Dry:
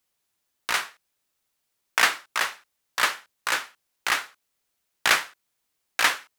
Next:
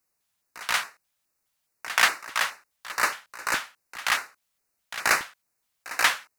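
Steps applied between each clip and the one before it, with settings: pre-echo 132 ms -15 dB; LFO notch square 2.4 Hz 360–3300 Hz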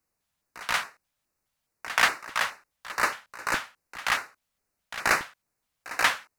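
tilt EQ -1.5 dB/octave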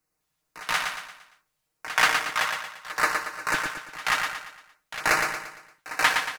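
comb 6.5 ms, depth 52%; on a send: feedback delay 115 ms, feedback 43%, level -5 dB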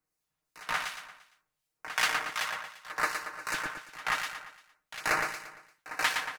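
harmonic tremolo 2.7 Hz, depth 50%, crossover 2.3 kHz; trim -4 dB

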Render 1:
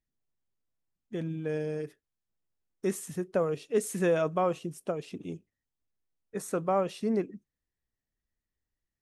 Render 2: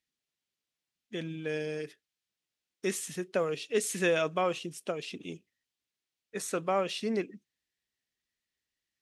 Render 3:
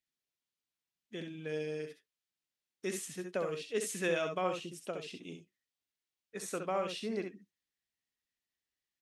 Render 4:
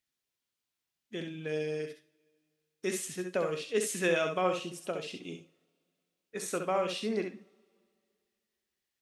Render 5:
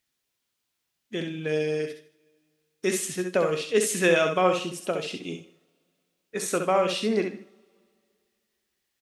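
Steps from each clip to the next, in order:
frequency weighting D; trim -1.5 dB
early reflections 65 ms -7 dB, 76 ms -14 dB; trim -6 dB
two-slope reverb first 0.47 s, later 2.3 s, from -22 dB, DRR 12 dB; trim +4 dB
delay 153 ms -21.5 dB; trim +7.5 dB

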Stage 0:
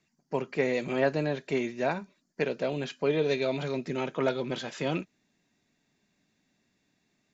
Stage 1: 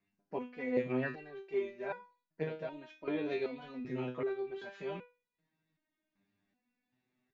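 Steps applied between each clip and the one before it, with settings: low-pass 2.8 kHz 12 dB/octave; resonator arpeggio 2.6 Hz 100–490 Hz; trim +3 dB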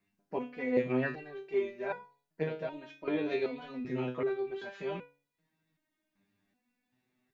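de-hum 142 Hz, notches 6; trim +3.5 dB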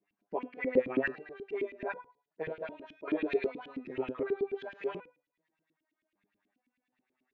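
LFO band-pass saw up 9.3 Hz 240–3000 Hz; trim +6.5 dB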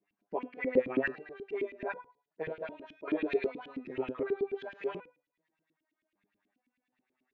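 no audible change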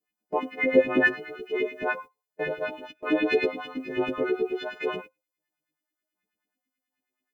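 partials quantised in pitch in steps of 3 st; gate -48 dBFS, range -16 dB; trim +8 dB

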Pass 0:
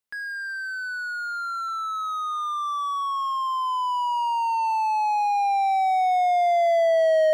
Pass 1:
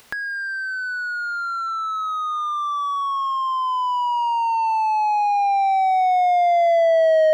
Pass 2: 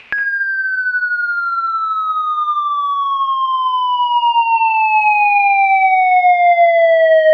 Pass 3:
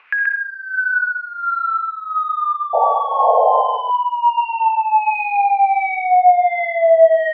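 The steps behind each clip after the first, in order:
treble shelf 6.8 kHz -11.5 dB; upward compressor, threshold -27 dBFS; trim +3.5 dB
resonant low-pass 2.5 kHz, resonance Q 7.2; flutter echo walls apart 10.5 m, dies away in 0.21 s; reverberation RT60 0.50 s, pre-delay 50 ms, DRR 10 dB; trim +4.5 dB
painted sound noise, 2.73–3.78 s, 440–920 Hz -11 dBFS; wah-wah 1.4 Hz 600–1800 Hz, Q 2.8; delay 130 ms -4.5 dB

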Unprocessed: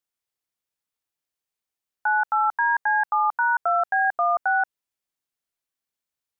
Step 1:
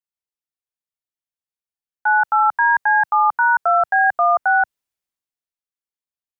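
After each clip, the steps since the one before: three bands expanded up and down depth 40%; trim +6 dB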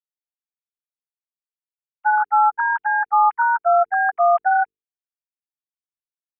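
formants replaced by sine waves; hum notches 50/100/150/200/250/300/350/400/450 Hz; trim -1.5 dB

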